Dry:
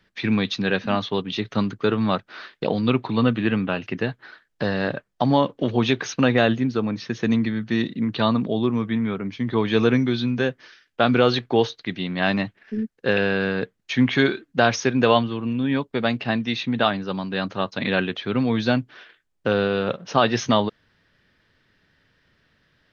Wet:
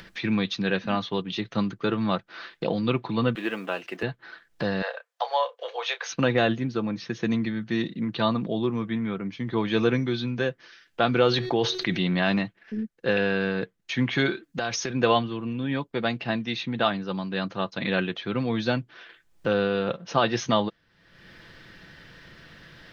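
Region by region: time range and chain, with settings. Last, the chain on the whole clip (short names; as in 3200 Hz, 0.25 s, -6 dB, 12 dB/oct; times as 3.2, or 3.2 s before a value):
3.35–4.03 G.711 law mismatch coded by mu + Chebyshev high-pass 430 Hz + mismatched tape noise reduction encoder only
4.82–6.12 steep high-pass 470 Hz 72 dB/oct + bell 610 Hz -4 dB 0.24 oct + doubler 30 ms -11 dB
11.27–12.39 resonator 370 Hz, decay 0.81 s, mix 30% + fast leveller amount 70%
14.43–14.9 high shelf 4200 Hz +9.5 dB + compressor 5:1, threshold -21 dBFS
whole clip: comb 5.9 ms, depth 34%; upward compressor, threshold -28 dBFS; gain -4 dB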